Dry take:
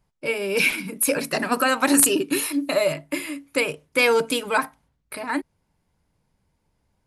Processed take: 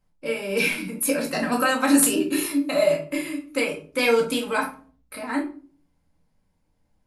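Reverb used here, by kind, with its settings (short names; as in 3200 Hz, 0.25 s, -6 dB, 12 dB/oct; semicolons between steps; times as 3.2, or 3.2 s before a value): shoebox room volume 280 m³, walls furnished, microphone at 2.1 m; gain -5.5 dB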